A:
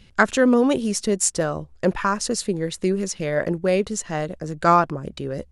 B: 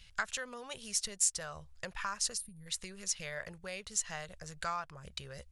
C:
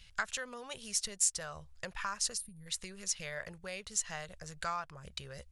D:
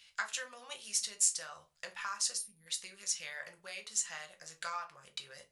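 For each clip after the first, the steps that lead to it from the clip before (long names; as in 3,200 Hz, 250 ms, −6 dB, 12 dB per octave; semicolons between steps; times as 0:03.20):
downward compressor 3 to 1, threshold −27 dBFS, peak gain reduction 12 dB; gain on a spectral selection 0:02.37–0:02.66, 310–8,800 Hz −22 dB; guitar amp tone stack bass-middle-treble 10-0-10
no processing that can be heard
high-pass filter 1,400 Hz 6 dB per octave; rectangular room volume 120 cubic metres, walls furnished, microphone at 0.87 metres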